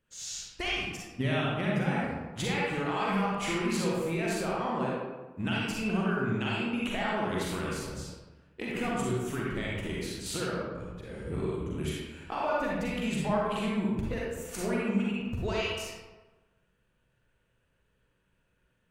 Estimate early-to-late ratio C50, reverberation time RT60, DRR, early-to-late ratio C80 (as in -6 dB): -3.0 dB, 1.2 s, -5.0 dB, 1.0 dB